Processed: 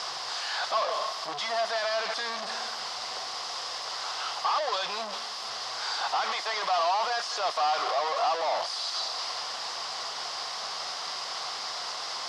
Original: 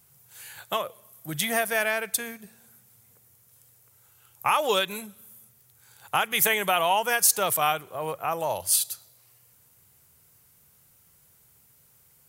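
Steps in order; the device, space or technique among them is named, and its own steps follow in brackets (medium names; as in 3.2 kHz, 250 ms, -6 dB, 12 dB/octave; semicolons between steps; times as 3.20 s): 6.20–8.33 s: tone controls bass -10 dB, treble -3 dB; home computer beeper (one-bit comparator; cabinet simulation 670–5100 Hz, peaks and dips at 720 Hz +9 dB, 1.1 kHz +8 dB, 1.6 kHz -3 dB, 2.4 kHz -7 dB, 5 kHz +10 dB); trim +1.5 dB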